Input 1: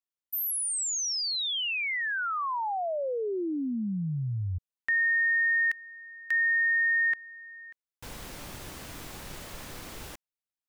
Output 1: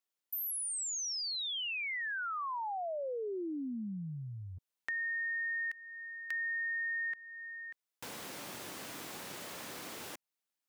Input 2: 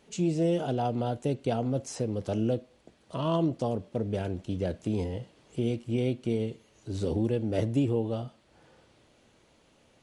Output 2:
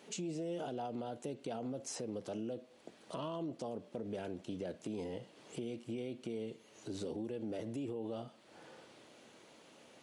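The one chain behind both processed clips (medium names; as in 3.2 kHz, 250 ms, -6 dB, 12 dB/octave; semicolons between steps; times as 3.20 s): peak limiter -24.5 dBFS; high-pass 210 Hz 12 dB/octave; compression 2:1, threshold -50 dBFS; trim +4 dB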